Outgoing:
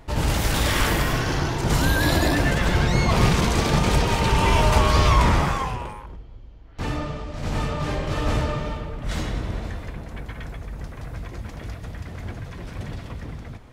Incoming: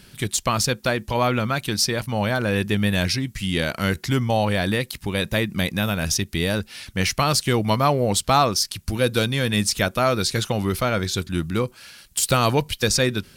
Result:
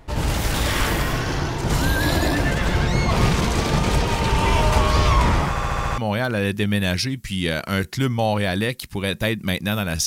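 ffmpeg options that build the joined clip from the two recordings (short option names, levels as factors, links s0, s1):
-filter_complex "[0:a]apad=whole_dur=10.06,atrim=end=10.06,asplit=7[s0][s1][s2][s3][s4][s5][s6];[s0]atrim=end=5.562[s7];[s1]atrim=start=5.488:end=5.562[s8];[s2]atrim=start=5.488:end=5.562[s9];[s3]atrim=start=5.488:end=5.562[s10];[s4]atrim=start=5.488:end=5.562[s11];[s5]atrim=start=5.488:end=5.562[s12];[s6]atrim=start=5.488:end=5.562[s13];[1:a]atrim=start=2.088:end=6.17[s14];[s7][s8]acrossfade=d=0.004:c1=hsin:c2=hsin[s15];[s15][s9]acrossfade=d=0.004:c1=hsin:c2=hsin[s16];[s16][s10]acrossfade=d=0.004:c1=hsin:c2=hsin[s17];[s17][s11]acrossfade=d=0.004:c1=hsin:c2=hsin[s18];[s18][s12]acrossfade=d=0.004:c1=hsin:c2=hsin[s19];[s19][s13]acrossfade=d=0.004:c1=hsin:c2=hsin[s20];[s20][s14]acrossfade=d=0.004:c1=hsin:c2=hsin"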